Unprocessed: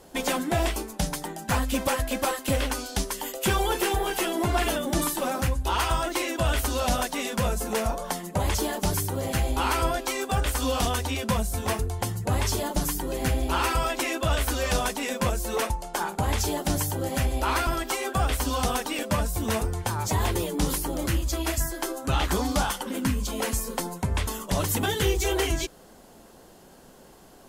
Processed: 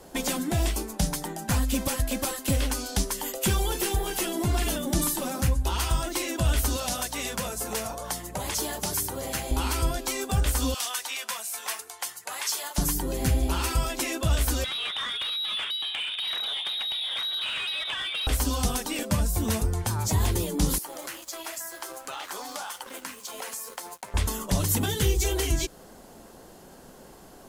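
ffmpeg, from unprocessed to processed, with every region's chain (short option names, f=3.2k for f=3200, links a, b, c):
-filter_complex "[0:a]asettb=1/sr,asplit=3[a][b][c];[a]atrim=end=6.764[d];[b]atrim=start=6.76:end=9.51,asetpts=PTS-STARTPTS,afade=t=in:d=0.004:c=qsin,afade=t=out:st=2.746:d=0.004:c=qsin,highpass=f=530:p=1,aeval=exprs='val(0)+0.00562*(sin(2*PI*60*n/s)+sin(2*PI*2*60*n/s)/2+sin(2*PI*3*60*n/s)/3+sin(2*PI*4*60*n/s)/4+sin(2*PI*5*60*n/s)/5)':c=same[e];[c]atrim=start=9.506[f];[d][e]acrossfade=d=0.004:c1=hsin:c2=qsin[g];[g][f]acrossfade=d=0.004:c1=qsin:c2=hsin,asettb=1/sr,asplit=3[h][i][j];[h]atrim=end=10.744[k];[i]atrim=start=10.74:end=12.78,asetpts=PTS-STARTPTS,afade=t=in:d=0.004:c=qsin,afade=t=out:st=2.036:d=0.004:c=qsin,highpass=1.3k,aecho=1:1:336:0.0631,atrim=end_sample=89964[l];[j]atrim=start=12.776[m];[k][l]acrossfade=d=0.004:c1=hsin:c2=qsin[n];[n][m]acrossfade=d=0.004:c1=qsin:c2=hsin,asettb=1/sr,asplit=3[o][p][q];[o]atrim=end=14.644[r];[p]atrim=start=14.64:end=18.27,asetpts=PTS-STARTPTS,afade=t=in:d=0.004:c=qsin,afade=t=out:st=3.626:d=0.004:c=qsin,lowpass=f=3.3k:t=q:w=0.5098,lowpass=f=3.3k:t=q:w=0.6013,lowpass=f=3.3k:t=q:w=0.9,lowpass=f=3.3k:t=q:w=2.563,afreqshift=-3900,acompressor=threshold=-32dB:ratio=8:attack=3.2:release=140:knee=1:detection=peak,asplit=2[s][t];[t]highpass=f=720:p=1,volume=18dB,asoftclip=type=tanh:threshold=-18.5dB[u];[s][u]amix=inputs=2:normalize=0,lowpass=f=2.5k:p=1,volume=-6dB[v];[q]atrim=start=18.266[w];[r][v]acrossfade=d=0.004:c1=hsin:c2=qsin[x];[x][w]acrossfade=d=0.004:c1=qsin:c2=hsin,asettb=1/sr,asplit=3[y][z][aa];[y]atrim=end=20.784[ab];[z]atrim=start=20.78:end=24.14,asetpts=PTS-STARTPTS,afade=t=in:d=0.004:c=qsin,afade=t=out:st=3.356:d=0.004:c=qsin,highpass=650,aeval=exprs='sgn(val(0))*max(abs(val(0))-0.00473,0)':c=same,acompressor=threshold=-36dB:ratio=2.5:attack=3.2:release=140:knee=1:detection=peak[ac];[aa]atrim=start=24.136[ad];[ab][ac]acrossfade=d=0.004:c1=hsin:c2=qsin[ae];[ae][ad]acrossfade=d=0.004:c1=qsin:c2=hsin,equalizer=f=3.1k:w=1.5:g=-2,acrossover=split=280|3000[af][ag][ah];[ag]acompressor=threshold=-36dB:ratio=4[ai];[af][ai][ah]amix=inputs=3:normalize=0,volume=2.5dB"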